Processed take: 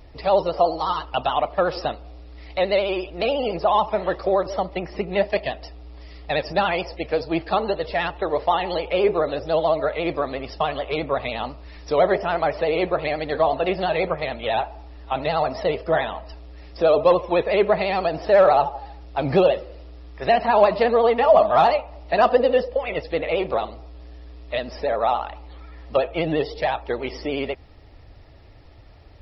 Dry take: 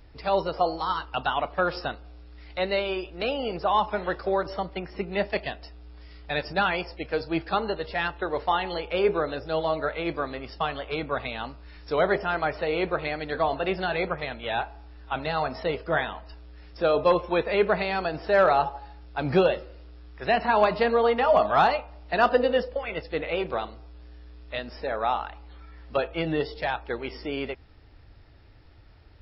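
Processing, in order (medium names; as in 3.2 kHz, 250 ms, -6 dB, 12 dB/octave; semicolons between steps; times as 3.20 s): peaking EQ 620 Hz +5.5 dB 0.72 oct; band-stop 1.5 kHz, Q 6; in parallel at -2 dB: compression, threshold -28 dBFS, peak gain reduction 16 dB; on the sum: vibrato 14 Hz 76 cents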